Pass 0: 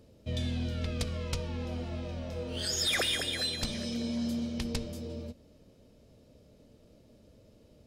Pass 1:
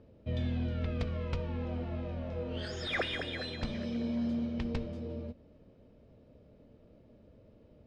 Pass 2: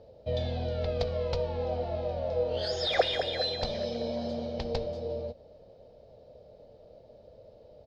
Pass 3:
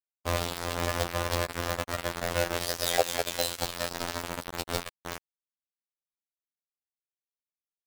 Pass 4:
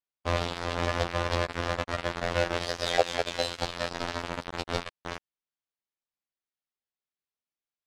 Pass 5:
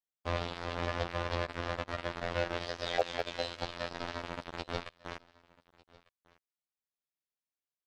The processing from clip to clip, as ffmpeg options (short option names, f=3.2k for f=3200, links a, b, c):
-af "lowpass=2.2k"
-af "firequalizer=gain_entry='entry(120,0);entry(270,-7);entry(500,12);entry(760,13);entry(1100,0);entry(2600,0);entry(4300,14);entry(8400,-1)':delay=0.05:min_phase=1"
-filter_complex "[0:a]asplit=2[a][b];[b]acompressor=threshold=-39dB:ratio=6,volume=2dB[c];[a][c]amix=inputs=2:normalize=0,acrusher=bits=3:mix=0:aa=0.000001,afftfilt=real='hypot(re,im)*cos(PI*b)':imag='0':win_size=2048:overlap=0.75,volume=1dB"
-af "lowpass=4.6k,volume=1.5dB"
-filter_complex "[0:a]acrossover=split=5800[a][b];[b]acompressor=threshold=-55dB:ratio=4:attack=1:release=60[c];[a][c]amix=inputs=2:normalize=0,aecho=1:1:1199:0.0631,asoftclip=type=hard:threshold=-7.5dB,volume=-6dB"